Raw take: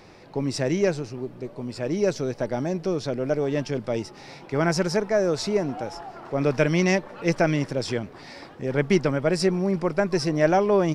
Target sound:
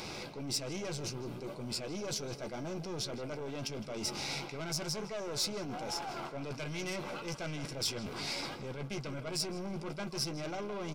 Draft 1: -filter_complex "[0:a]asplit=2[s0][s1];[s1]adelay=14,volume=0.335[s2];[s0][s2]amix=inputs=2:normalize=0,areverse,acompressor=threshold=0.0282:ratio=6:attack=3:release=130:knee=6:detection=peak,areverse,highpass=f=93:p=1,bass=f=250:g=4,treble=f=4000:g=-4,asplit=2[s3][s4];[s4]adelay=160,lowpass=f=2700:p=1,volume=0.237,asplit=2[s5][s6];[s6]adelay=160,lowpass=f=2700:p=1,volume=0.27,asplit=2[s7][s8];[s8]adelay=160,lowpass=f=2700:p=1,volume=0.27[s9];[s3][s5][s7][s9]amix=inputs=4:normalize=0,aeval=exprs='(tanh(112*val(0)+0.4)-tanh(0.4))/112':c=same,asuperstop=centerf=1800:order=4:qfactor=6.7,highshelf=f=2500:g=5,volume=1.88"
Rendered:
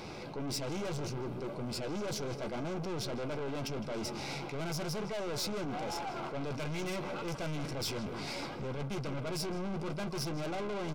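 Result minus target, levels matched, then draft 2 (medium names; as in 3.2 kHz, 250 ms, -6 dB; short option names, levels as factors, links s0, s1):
compression: peak gain reduction -8.5 dB; 4 kHz band -4.0 dB
-filter_complex "[0:a]asplit=2[s0][s1];[s1]adelay=14,volume=0.335[s2];[s0][s2]amix=inputs=2:normalize=0,areverse,acompressor=threshold=0.00891:ratio=6:attack=3:release=130:knee=6:detection=peak,areverse,highpass=f=93:p=1,bass=f=250:g=4,treble=f=4000:g=-4,asplit=2[s3][s4];[s4]adelay=160,lowpass=f=2700:p=1,volume=0.237,asplit=2[s5][s6];[s6]adelay=160,lowpass=f=2700:p=1,volume=0.27,asplit=2[s7][s8];[s8]adelay=160,lowpass=f=2700:p=1,volume=0.27[s9];[s3][s5][s7][s9]amix=inputs=4:normalize=0,aeval=exprs='(tanh(112*val(0)+0.4)-tanh(0.4))/112':c=same,asuperstop=centerf=1800:order=4:qfactor=6.7,highshelf=f=2500:g=15.5,volume=1.88"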